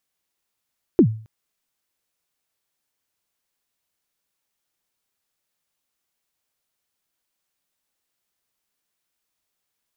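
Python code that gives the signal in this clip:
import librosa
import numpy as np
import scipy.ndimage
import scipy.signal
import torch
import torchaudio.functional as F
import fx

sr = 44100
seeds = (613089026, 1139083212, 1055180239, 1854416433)

y = fx.drum_kick(sr, seeds[0], length_s=0.27, level_db=-6, start_hz=400.0, end_hz=110.0, sweep_ms=79.0, decay_s=0.42, click=False)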